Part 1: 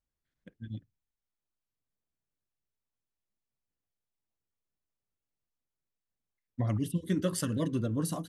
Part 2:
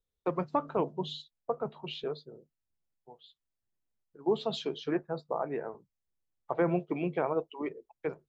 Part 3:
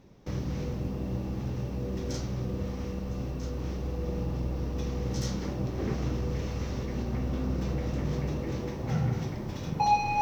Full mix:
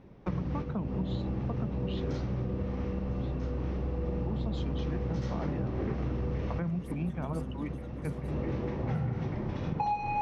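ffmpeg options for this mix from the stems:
ffmpeg -i stem1.wav -i stem2.wav -i stem3.wav -filter_complex "[0:a]acrossover=split=110|690[link_01][link_02][link_03];[link_01]acompressor=threshold=-39dB:ratio=4[link_04];[link_02]acompressor=threshold=-37dB:ratio=4[link_05];[link_03]acompressor=threshold=-44dB:ratio=4[link_06];[link_04][link_05][link_06]amix=inputs=3:normalize=0,volume=-13dB,asplit=3[link_07][link_08][link_09];[link_08]volume=-14.5dB[link_10];[1:a]lowshelf=frequency=280:width_type=q:width=3:gain=11,acompressor=threshold=-26dB:ratio=6,volume=-3dB[link_11];[2:a]lowpass=2500,volume=2.5dB[link_12];[link_09]apad=whole_len=450381[link_13];[link_12][link_13]sidechaincompress=threshold=-58dB:ratio=5:attack=6.8:release=234[link_14];[link_10]aecho=0:1:901:1[link_15];[link_07][link_11][link_14][link_15]amix=inputs=4:normalize=0,acompressor=threshold=-28dB:ratio=6" out.wav

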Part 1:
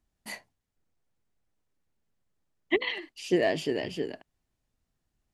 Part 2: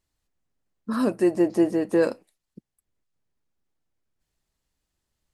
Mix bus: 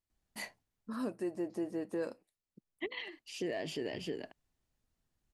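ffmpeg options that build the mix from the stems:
ffmpeg -i stem1.wav -i stem2.wav -filter_complex "[0:a]adelay=100,volume=-3dB[link_01];[1:a]volume=-13.5dB,asplit=2[link_02][link_03];[link_03]apad=whole_len=239876[link_04];[link_01][link_04]sidechaincompress=threshold=-51dB:ratio=5:attack=16:release=1020[link_05];[link_05][link_02]amix=inputs=2:normalize=0,alimiter=level_in=3.5dB:limit=-24dB:level=0:latency=1:release=165,volume=-3.5dB" out.wav

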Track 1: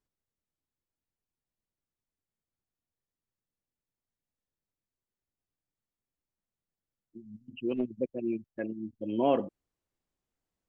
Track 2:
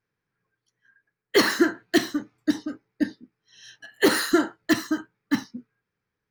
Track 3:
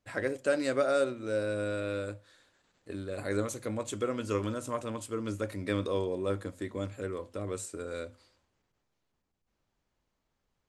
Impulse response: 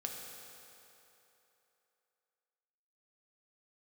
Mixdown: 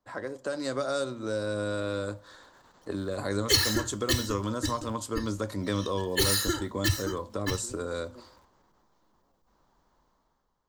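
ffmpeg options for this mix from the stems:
-filter_complex "[0:a]acompressor=threshold=-36dB:ratio=6,volume=-6dB[link_01];[1:a]lowshelf=frequency=130:width_type=q:width=3:gain=12.5,aecho=1:1:2.3:0.91,acrusher=bits=10:mix=0:aa=0.000001,adelay=2150,volume=0.5dB[link_02];[2:a]equalizer=frequency=100:width_type=o:width=0.67:gain=-8,equalizer=frequency=1000:width_type=o:width=0.67:gain=9,equalizer=frequency=2500:width_type=o:width=0.67:gain=-11,equalizer=frequency=10000:width_type=o:width=0.67:gain=-11,dynaudnorm=framelen=120:gausssize=11:maxgain=12dB,volume=0dB,asplit=2[link_03][link_04];[link_04]apad=whole_len=471124[link_05];[link_01][link_05]sidechaingate=range=-33dB:threshold=-43dB:ratio=16:detection=peak[link_06];[link_06][link_02][link_03]amix=inputs=3:normalize=0,acrossover=split=160|3000[link_07][link_08][link_09];[link_08]acompressor=threshold=-34dB:ratio=3[link_10];[link_07][link_10][link_09]amix=inputs=3:normalize=0"

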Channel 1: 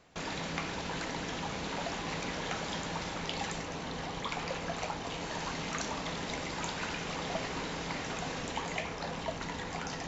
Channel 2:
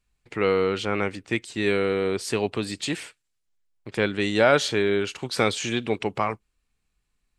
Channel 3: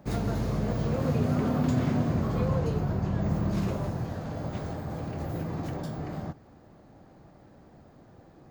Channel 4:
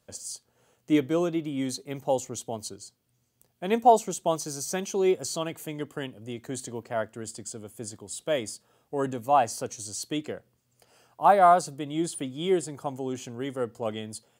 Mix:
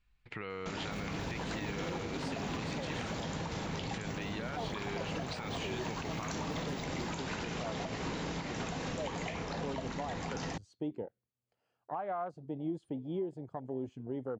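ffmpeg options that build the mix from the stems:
ffmpeg -i stem1.wav -i stem2.wav -i stem3.wav -i stem4.wav -filter_complex "[0:a]equalizer=frequency=130:width=0.32:gain=6,adelay=500,volume=0dB[link_01];[1:a]equalizer=frequency=390:width_type=o:width=2.1:gain=-8,volume=2dB[link_02];[2:a]acompressor=threshold=-29dB:ratio=6,adelay=850,volume=-7.5dB[link_03];[3:a]afwtdn=0.02,adelay=700,volume=-4dB[link_04];[link_02][link_04]amix=inputs=2:normalize=0,lowpass=3400,acompressor=threshold=-32dB:ratio=6,volume=0dB[link_05];[link_01][link_03][link_05]amix=inputs=3:normalize=0,alimiter=level_in=4dB:limit=-24dB:level=0:latency=1:release=175,volume=-4dB" out.wav

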